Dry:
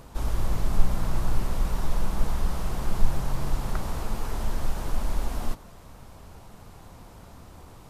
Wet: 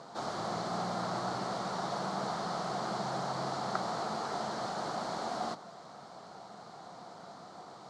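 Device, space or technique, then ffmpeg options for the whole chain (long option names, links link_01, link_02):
television speaker: -af "highpass=frequency=170:width=0.5412,highpass=frequency=170:width=1.3066,equalizer=frequency=260:width_type=q:width=4:gain=-5,equalizer=frequency=720:width_type=q:width=4:gain=10,equalizer=frequency=1300:width_type=q:width=4:gain=6,equalizer=frequency=2600:width_type=q:width=4:gain=-9,equalizer=frequency=4300:width_type=q:width=4:gain=8,lowpass=frequency=7200:width=0.5412,lowpass=frequency=7200:width=1.3066,volume=-1dB"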